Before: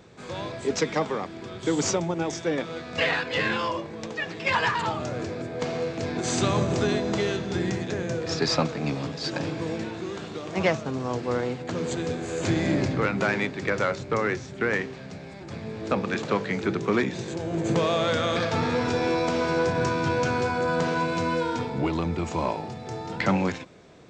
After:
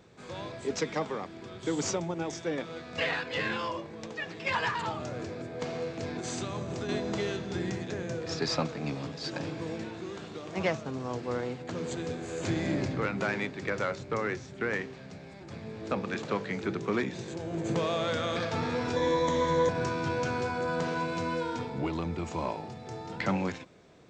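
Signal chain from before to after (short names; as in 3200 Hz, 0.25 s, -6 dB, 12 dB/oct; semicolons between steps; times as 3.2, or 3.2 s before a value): 6.13–6.89 compressor, threshold -26 dBFS, peak gain reduction 7.5 dB; 18.96–19.69 ripple EQ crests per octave 1.1, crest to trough 15 dB; gain -6 dB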